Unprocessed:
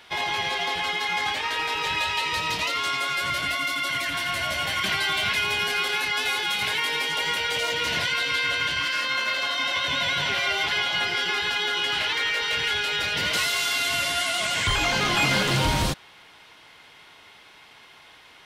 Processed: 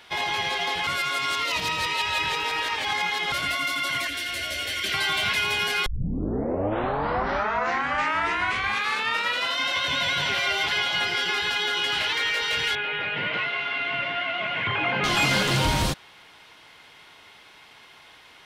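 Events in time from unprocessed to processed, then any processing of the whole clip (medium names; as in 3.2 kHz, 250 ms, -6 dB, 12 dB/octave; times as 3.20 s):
0.87–3.32 s: reverse
4.07–4.94 s: static phaser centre 380 Hz, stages 4
5.86 s: tape start 3.76 s
12.75–15.04 s: elliptic band-pass 120–2600 Hz, stop band 60 dB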